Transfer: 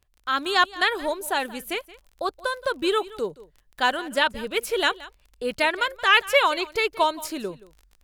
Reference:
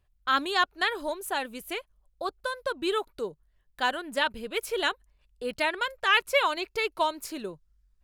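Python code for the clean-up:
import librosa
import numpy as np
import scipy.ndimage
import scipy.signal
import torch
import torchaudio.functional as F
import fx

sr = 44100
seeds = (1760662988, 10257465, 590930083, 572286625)

y = fx.fix_declick_ar(x, sr, threshold=6.5)
y = fx.fix_echo_inverse(y, sr, delay_ms=174, level_db=-19.0)
y = fx.fix_level(y, sr, at_s=0.46, step_db=-5.0)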